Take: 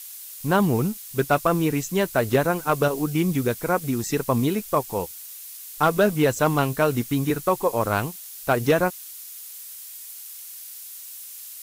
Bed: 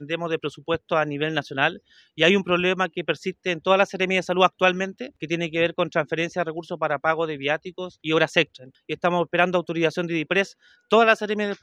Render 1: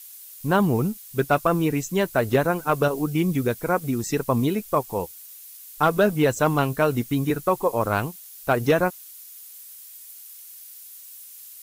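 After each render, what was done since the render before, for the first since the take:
broadband denoise 6 dB, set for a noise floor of −40 dBFS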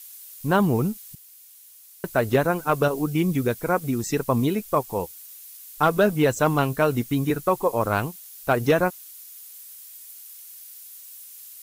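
0:01.15–0:02.04: fill with room tone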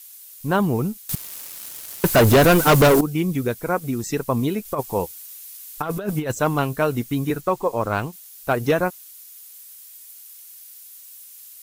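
0:01.09–0:03.01: leveller curve on the samples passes 5
0:04.65–0:06.32: compressor whose output falls as the input rises −22 dBFS, ratio −0.5
0:07.41–0:08.13: parametric band 12,000 Hz −9.5 dB 0.58 octaves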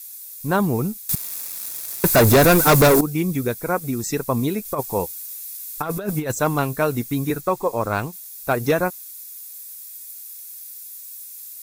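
high-shelf EQ 5,200 Hz +6 dB
notch filter 3,000 Hz, Q 6.7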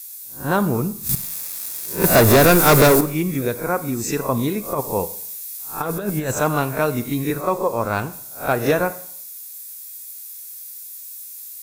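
peak hold with a rise ahead of every peak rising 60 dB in 0.30 s
four-comb reverb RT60 0.63 s, combs from 31 ms, DRR 13.5 dB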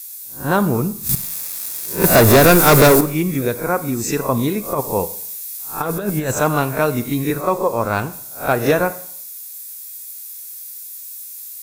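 level +2.5 dB
brickwall limiter −2 dBFS, peak gain reduction 1 dB

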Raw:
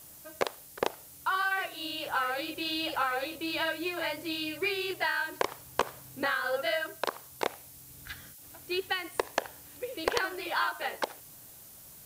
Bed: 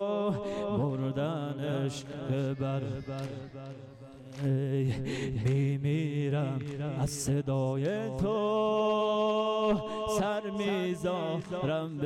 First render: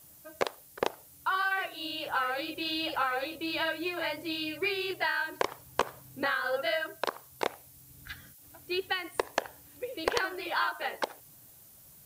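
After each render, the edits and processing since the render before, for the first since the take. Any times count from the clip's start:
broadband denoise 6 dB, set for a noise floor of −51 dBFS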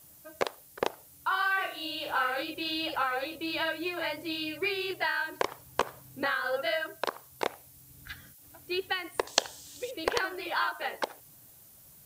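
0:01.27–0:02.43: flutter between parallel walls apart 6.1 metres, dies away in 0.36 s
0:09.27–0:09.91: flat-topped bell 5,000 Hz +15 dB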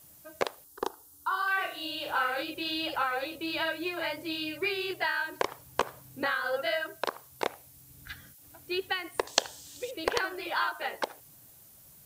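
0:00.64–0:01.48: phaser with its sweep stopped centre 600 Hz, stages 6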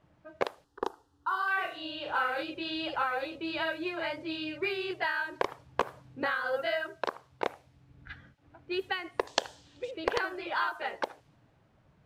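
low-pass filter 2,800 Hz 6 dB per octave
low-pass that shuts in the quiet parts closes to 2,100 Hz, open at −27.5 dBFS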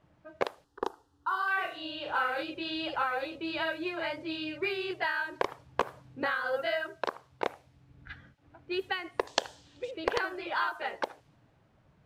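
no processing that can be heard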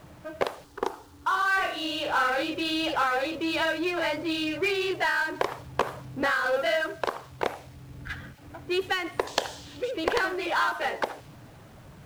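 power curve on the samples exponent 0.7
bit-depth reduction 10 bits, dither none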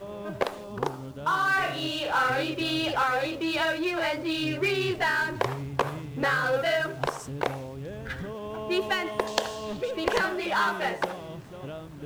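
mix in bed −8 dB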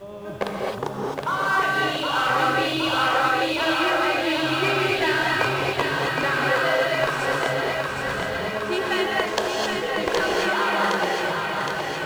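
feedback echo with a high-pass in the loop 766 ms, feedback 73%, high-pass 350 Hz, level −4 dB
reverb whose tail is shaped and stops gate 290 ms rising, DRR −1.5 dB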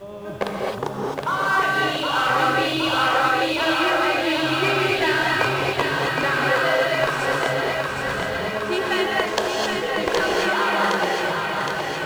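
level +1.5 dB

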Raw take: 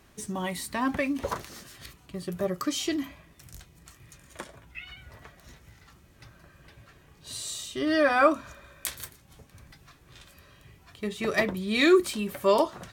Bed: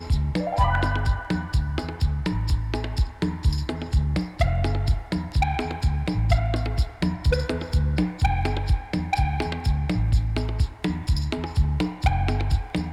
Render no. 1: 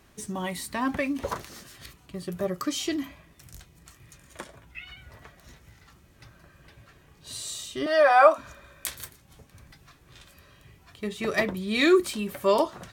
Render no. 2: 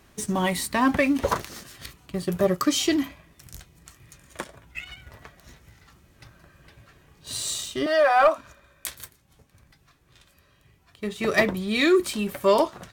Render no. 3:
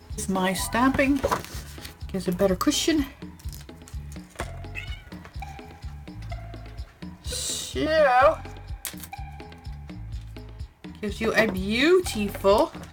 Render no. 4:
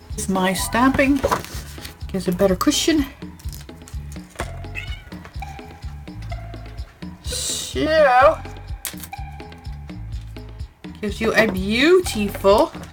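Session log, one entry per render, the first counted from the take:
0:07.86–0:08.38: high-pass with resonance 700 Hz, resonance Q 2.9
leveller curve on the samples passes 1; speech leveller within 4 dB 0.5 s
mix in bed −15 dB
level +5 dB

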